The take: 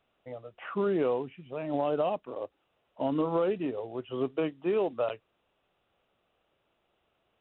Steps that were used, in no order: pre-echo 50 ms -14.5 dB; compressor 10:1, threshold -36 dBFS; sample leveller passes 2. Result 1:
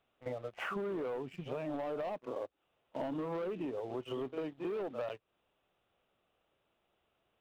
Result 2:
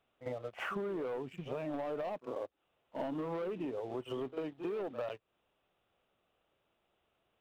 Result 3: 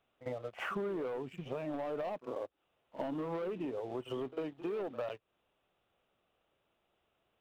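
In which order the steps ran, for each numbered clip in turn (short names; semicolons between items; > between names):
pre-echo > sample leveller > compressor; sample leveller > pre-echo > compressor; sample leveller > compressor > pre-echo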